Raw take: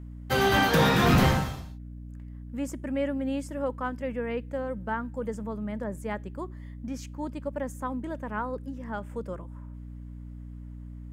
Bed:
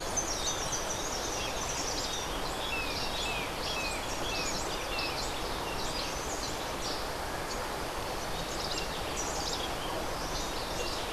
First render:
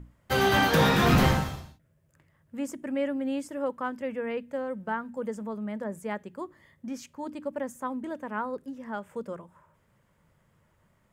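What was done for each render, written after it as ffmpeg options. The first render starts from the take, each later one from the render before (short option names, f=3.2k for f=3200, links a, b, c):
-af "bandreject=f=60:t=h:w=6,bandreject=f=120:t=h:w=6,bandreject=f=180:t=h:w=6,bandreject=f=240:t=h:w=6,bandreject=f=300:t=h:w=6"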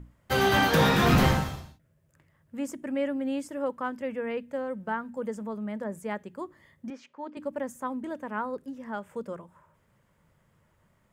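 -filter_complex "[0:a]asettb=1/sr,asplit=3[a][b][c];[a]atrim=end=6.904[d];[b]atrim=start=6.9:end=7.37,asetpts=PTS-STARTPTS,afade=t=in:d=0.004:c=qsin,afade=t=out:st=0.466:d=0.004:c=qsin,highpass=360,lowpass=3k[e];[c]atrim=start=7.366[f];[d][e]acrossfade=d=0.004:c1=hsin:c2=qsin[g];[g][f]acrossfade=d=0.004:c1=qsin:c2=hsin"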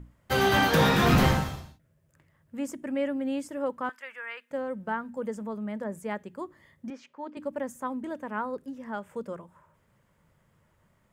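-filter_complex "[0:a]asettb=1/sr,asplit=3[a][b][c];[a]atrim=end=3.894[d];[b]atrim=start=3.89:end=4.51,asetpts=PTS-STARTPTS,afade=t=in:d=0.004:c=qsin,afade=t=out:st=0.616:d=0.004:c=qsin,highpass=f=1.4k:t=q:w=1.8[e];[c]atrim=start=4.506[f];[d][e]acrossfade=d=0.004:c1=hsin:c2=qsin[g];[g][f]acrossfade=d=0.004:c1=qsin:c2=hsin"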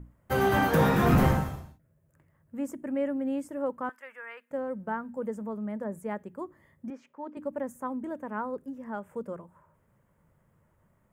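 -af "equalizer=f=4.1k:w=0.7:g=-12.5"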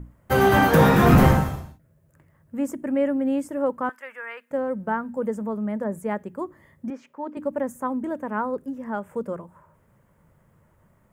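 -af "volume=7dB"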